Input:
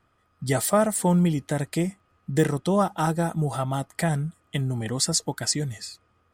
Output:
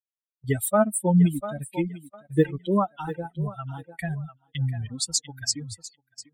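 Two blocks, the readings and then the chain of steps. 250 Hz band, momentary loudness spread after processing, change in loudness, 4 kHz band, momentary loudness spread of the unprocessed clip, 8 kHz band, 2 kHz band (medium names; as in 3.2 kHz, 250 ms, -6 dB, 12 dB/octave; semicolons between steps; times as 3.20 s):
-0.5 dB, 16 LU, -1.0 dB, -2.0 dB, 10 LU, -2.0 dB, -4.0 dB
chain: expander on every frequency bin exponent 3; thinning echo 696 ms, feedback 26%, high-pass 280 Hz, level -13 dB; rotary cabinet horn 6 Hz; gate -51 dBFS, range -16 dB; trim +6 dB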